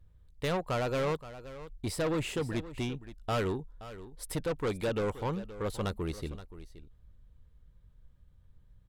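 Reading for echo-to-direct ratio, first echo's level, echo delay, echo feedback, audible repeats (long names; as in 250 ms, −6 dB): −15.0 dB, −15.0 dB, 524 ms, repeats not evenly spaced, 1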